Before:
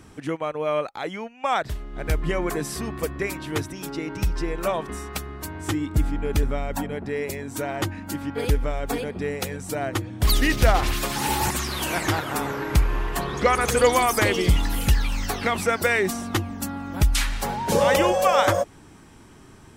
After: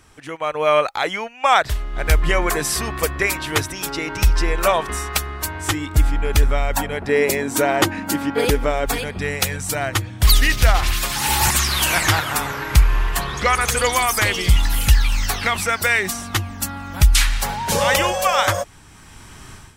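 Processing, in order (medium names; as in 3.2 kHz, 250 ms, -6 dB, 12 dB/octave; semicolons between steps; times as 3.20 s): level rider gain up to 14.5 dB; peaking EQ 220 Hz -12.5 dB 2.5 oct, from 7.09 s 70 Hz, from 8.86 s 330 Hz; trim +1 dB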